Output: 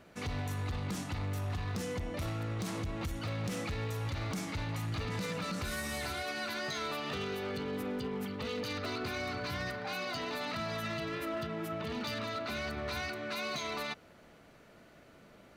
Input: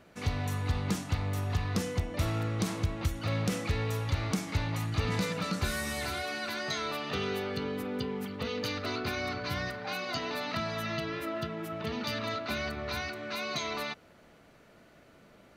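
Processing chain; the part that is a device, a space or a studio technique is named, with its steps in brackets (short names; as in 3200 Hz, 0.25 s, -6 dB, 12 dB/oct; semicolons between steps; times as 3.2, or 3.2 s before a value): limiter into clipper (limiter -27.5 dBFS, peak gain reduction 7.5 dB; hard clip -31.5 dBFS, distortion -18 dB)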